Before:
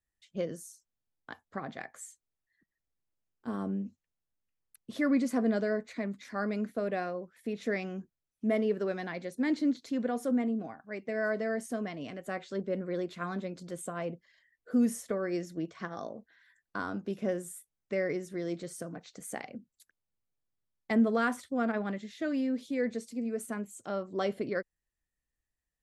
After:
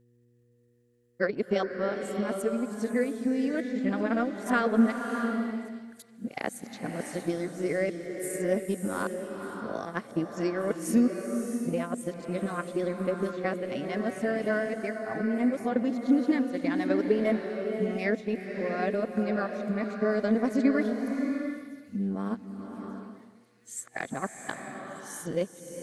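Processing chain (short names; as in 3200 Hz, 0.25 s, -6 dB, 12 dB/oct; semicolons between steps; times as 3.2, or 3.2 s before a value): whole clip reversed; HPF 63 Hz; in parallel at -2.5 dB: compressor, threshold -40 dBFS, peak gain reduction 18 dB; on the sum: transient shaper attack +6 dB, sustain -8 dB; buzz 120 Hz, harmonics 4, -64 dBFS -4 dB/oct; on a send: thin delay 1.188 s, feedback 82%, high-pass 3800 Hz, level -20.5 dB; on the sum: bloom reverb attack 0.67 s, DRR 4.5 dB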